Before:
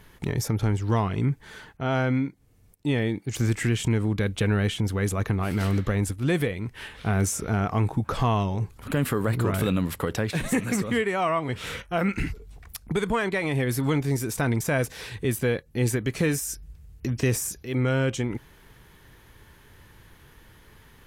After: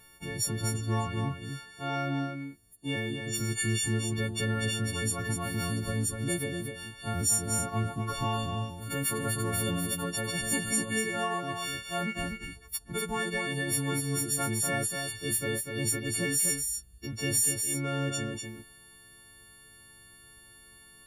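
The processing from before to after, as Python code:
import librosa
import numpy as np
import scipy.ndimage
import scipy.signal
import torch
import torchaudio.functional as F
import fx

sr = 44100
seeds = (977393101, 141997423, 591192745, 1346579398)

y = fx.freq_snap(x, sr, grid_st=4)
y = y + 10.0 ** (-5.5 / 20.0) * np.pad(y, (int(246 * sr / 1000.0), 0))[:len(y)]
y = fx.dynamic_eq(y, sr, hz=2100.0, q=0.77, threshold_db=-36.0, ratio=4.0, max_db=-4, at=(5.76, 7.67), fade=0.02)
y = F.gain(torch.from_numpy(y), -9.0).numpy()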